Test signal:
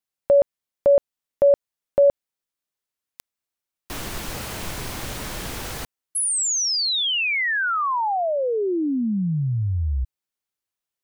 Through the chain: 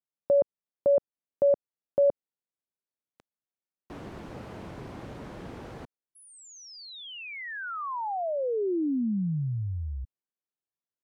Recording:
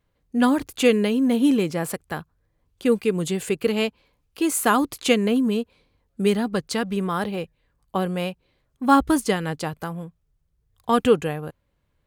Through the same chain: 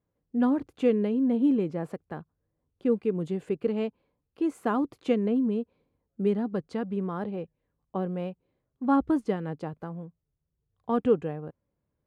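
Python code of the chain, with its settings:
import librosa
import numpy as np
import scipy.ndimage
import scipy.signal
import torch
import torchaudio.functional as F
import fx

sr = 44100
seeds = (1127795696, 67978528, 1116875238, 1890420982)

y = fx.bandpass_q(x, sr, hz=280.0, q=0.5)
y = y * 10.0 ** (-4.5 / 20.0)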